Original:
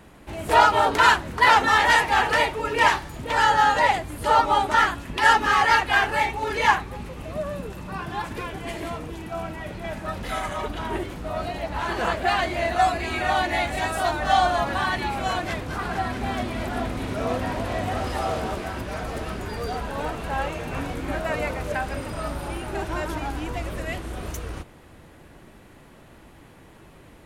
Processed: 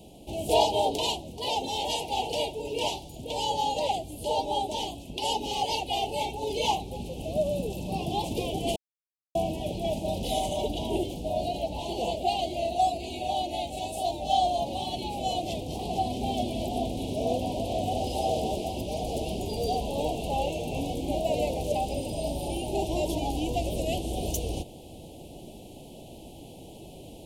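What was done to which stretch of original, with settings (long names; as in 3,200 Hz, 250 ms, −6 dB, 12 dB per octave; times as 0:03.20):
0:08.76–0:09.35: silence
whole clip: elliptic band-stop filter 760–2,900 Hz, stop band 60 dB; low-shelf EQ 170 Hz −6.5 dB; speech leveller 2 s; level −1 dB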